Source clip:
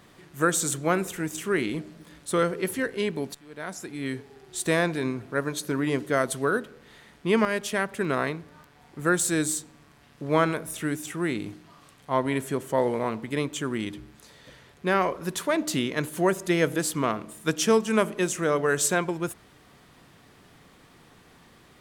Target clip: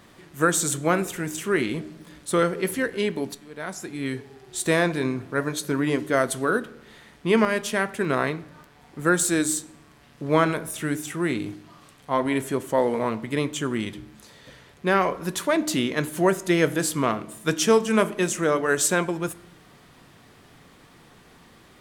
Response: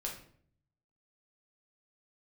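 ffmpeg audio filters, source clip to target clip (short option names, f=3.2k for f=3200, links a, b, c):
-filter_complex "[0:a]flanger=delay=3.3:depth=5:regen=-80:speed=0.32:shape=sinusoidal,asplit=2[a][b];[1:a]atrim=start_sample=2205,asetrate=27783,aresample=44100[c];[b][c]afir=irnorm=-1:irlink=0,volume=-19dB[d];[a][d]amix=inputs=2:normalize=0,volume=6dB"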